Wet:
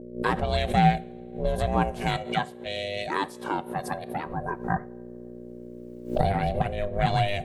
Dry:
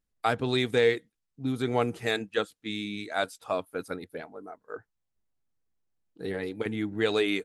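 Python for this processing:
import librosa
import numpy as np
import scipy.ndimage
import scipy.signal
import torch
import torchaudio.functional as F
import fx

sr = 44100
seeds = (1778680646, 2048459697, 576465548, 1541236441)

y = fx.recorder_agc(x, sr, target_db=-17.0, rise_db_per_s=12.0, max_gain_db=30)
y = fx.rev_double_slope(y, sr, seeds[0], early_s=0.45, late_s=2.4, knee_db=-19, drr_db=16.0)
y = fx.add_hum(y, sr, base_hz=60, snr_db=10)
y = fx.peak_eq(y, sr, hz=450.0, db=6.5, octaves=1.3)
y = fx.small_body(y, sr, hz=(1300.0, 2600.0), ring_ms=45, db=8)
y = y * np.sin(2.0 * np.pi * 300.0 * np.arange(len(y)) / sr)
y = fx.highpass(y, sr, hz=250.0, slope=6, at=(2.17, 4.26))
y = fx.pre_swell(y, sr, db_per_s=140.0)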